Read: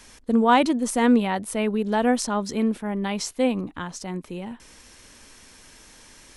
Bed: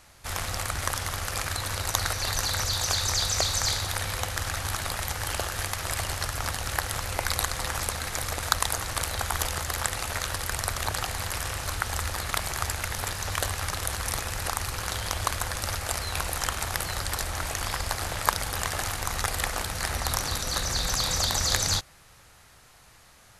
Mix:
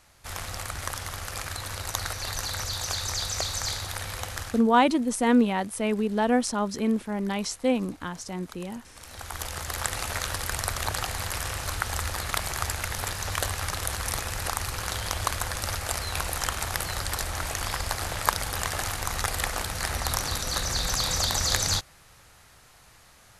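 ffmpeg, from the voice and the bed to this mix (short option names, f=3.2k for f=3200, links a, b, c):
-filter_complex "[0:a]adelay=4250,volume=-2dB[a];[1:a]volume=18.5dB,afade=t=out:st=4.4:d=0.24:silence=0.11885,afade=t=in:st=8.96:d=1.02:silence=0.0749894[b];[a][b]amix=inputs=2:normalize=0"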